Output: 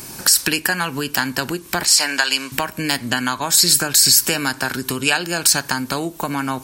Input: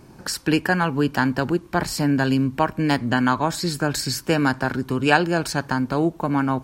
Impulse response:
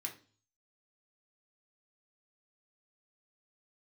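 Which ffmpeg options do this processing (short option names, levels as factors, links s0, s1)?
-filter_complex "[0:a]asettb=1/sr,asplit=3[s0][s1][s2];[s0]atrim=end=1.854[s3];[s1]atrim=start=1.85:end=2.52,asetpts=PTS-STARTPTS,afade=t=in:d=0.004:c=qsin,afade=t=out:st=0.666:d=0.004:c=qsin,highpass=750,lowpass=7900[s4];[s2]atrim=start=2.516[s5];[s3][s4]acrossfade=d=0.004:c1=hsin:c2=qsin[s6];[s6][s5]acrossfade=d=0.004:c1=qsin:c2=hsin,acompressor=threshold=0.0398:ratio=6,crystalizer=i=9.5:c=0,asplit=2[s7][s8];[1:a]atrim=start_sample=2205[s9];[s8][s9]afir=irnorm=-1:irlink=0,volume=0.237[s10];[s7][s10]amix=inputs=2:normalize=0,alimiter=level_in=2.11:limit=0.891:release=50:level=0:latency=1,volume=0.891"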